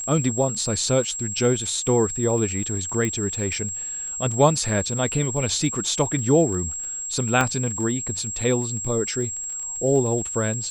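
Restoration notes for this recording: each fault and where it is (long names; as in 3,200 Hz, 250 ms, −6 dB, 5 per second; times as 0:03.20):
surface crackle 28 per second −31 dBFS
whistle 7,600 Hz −28 dBFS
0:03.05: click −13 dBFS
0:07.41: click −7 dBFS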